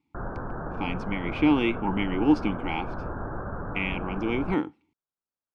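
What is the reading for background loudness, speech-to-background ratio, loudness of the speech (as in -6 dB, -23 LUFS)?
-36.0 LUFS, 8.5 dB, -27.5 LUFS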